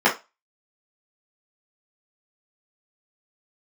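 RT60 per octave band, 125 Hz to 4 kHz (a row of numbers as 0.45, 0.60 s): 0.15, 0.20, 0.25, 0.25, 0.20, 0.25 s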